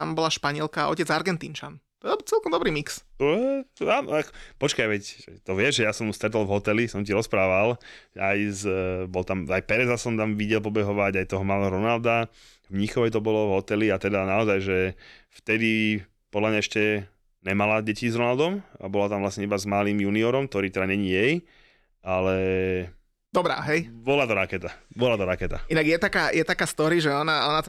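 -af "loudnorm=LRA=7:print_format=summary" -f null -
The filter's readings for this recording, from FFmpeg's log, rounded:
Input Integrated:    -24.6 LUFS
Input True Peak:      -9.5 dBTP
Input LRA:             2.5 LU
Input Threshold:     -35.0 LUFS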